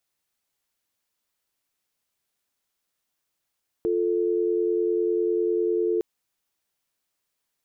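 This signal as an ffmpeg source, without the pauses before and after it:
ffmpeg -f lavfi -i "aevalsrc='0.0668*(sin(2*PI*350*t)+sin(2*PI*440*t))':duration=2.16:sample_rate=44100" out.wav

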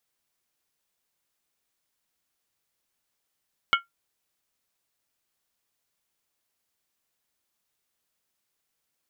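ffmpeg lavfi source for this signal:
ffmpeg -f lavfi -i "aevalsrc='0.188*pow(10,-3*t/0.15)*sin(2*PI*1380*t)+0.141*pow(10,-3*t/0.119)*sin(2*PI*2199.7*t)+0.106*pow(10,-3*t/0.103)*sin(2*PI*2947.7*t)+0.0794*pow(10,-3*t/0.099)*sin(2*PI*3168.5*t)':duration=0.63:sample_rate=44100" out.wav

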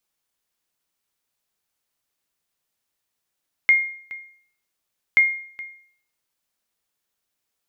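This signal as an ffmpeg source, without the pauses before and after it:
ffmpeg -f lavfi -i "aevalsrc='0.376*(sin(2*PI*2130*mod(t,1.48))*exp(-6.91*mod(t,1.48)/0.55)+0.112*sin(2*PI*2130*max(mod(t,1.48)-0.42,0))*exp(-6.91*max(mod(t,1.48)-0.42,0)/0.55))':duration=2.96:sample_rate=44100" out.wav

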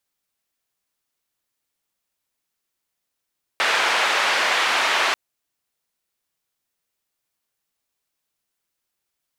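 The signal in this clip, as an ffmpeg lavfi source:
ffmpeg -f lavfi -i "anoisesrc=color=white:duration=1.54:sample_rate=44100:seed=1,highpass=frequency=680,lowpass=frequency=2400,volume=-4.6dB" out.wav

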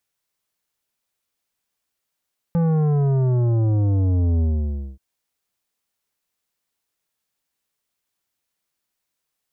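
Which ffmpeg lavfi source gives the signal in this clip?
ffmpeg -f lavfi -i "aevalsrc='0.141*clip((2.43-t)/0.57,0,1)*tanh(3.55*sin(2*PI*170*2.43/log(65/170)*(exp(log(65/170)*t/2.43)-1)))/tanh(3.55)':duration=2.43:sample_rate=44100" out.wav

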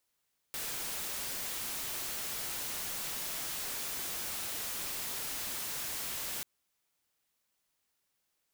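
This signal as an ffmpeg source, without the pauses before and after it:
ffmpeg -f lavfi -i "anoisesrc=color=white:amplitude=0.0218:duration=5.89:sample_rate=44100:seed=1" out.wav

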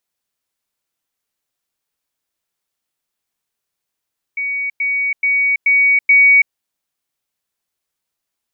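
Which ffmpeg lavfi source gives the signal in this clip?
ffmpeg -f lavfi -i "aevalsrc='pow(10,(-18+3*floor(t/0.43))/20)*sin(2*PI*2250*t)*clip(min(mod(t,0.43),0.33-mod(t,0.43))/0.005,0,1)':duration=2.15:sample_rate=44100" out.wav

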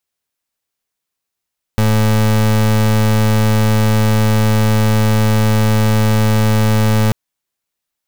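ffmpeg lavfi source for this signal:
ffmpeg -f lavfi -i "aevalsrc='0.251*(2*lt(mod(108*t,1),0.31)-1)':duration=5.34:sample_rate=44100" out.wav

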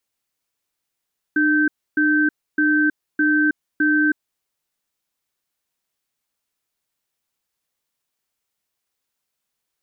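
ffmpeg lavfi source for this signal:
ffmpeg -f lavfi -i "aevalsrc='0.141*(sin(2*PI*302*t)+sin(2*PI*1550*t))*clip(min(mod(t,0.61),0.32-mod(t,0.61))/0.005,0,1)':duration=2.81:sample_rate=44100" out.wav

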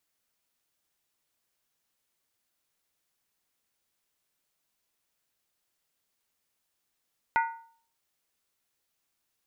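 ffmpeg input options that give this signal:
ffmpeg -f lavfi -i "aevalsrc='0.1*pow(10,-3*t/0.51)*sin(2*PI*916*t)+0.0562*pow(10,-3*t/0.404)*sin(2*PI*1460.1*t)+0.0316*pow(10,-3*t/0.349)*sin(2*PI*1956.6*t)+0.0178*pow(10,-3*t/0.337)*sin(2*PI*2103.1*t)+0.01*pow(10,-3*t/0.313)*sin(2*PI*2430.1*t)':duration=0.63:sample_rate=44100" out.wav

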